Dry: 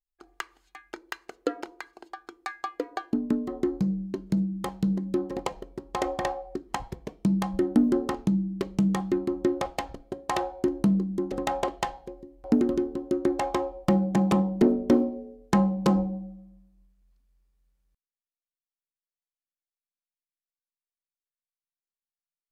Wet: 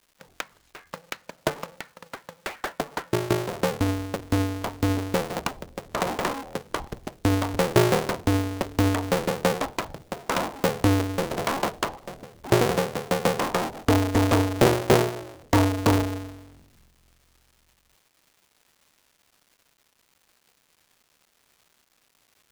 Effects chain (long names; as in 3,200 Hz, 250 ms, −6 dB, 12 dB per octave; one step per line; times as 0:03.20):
sub-harmonics by changed cycles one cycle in 2, inverted
surface crackle 520 per second −51 dBFS
level +2 dB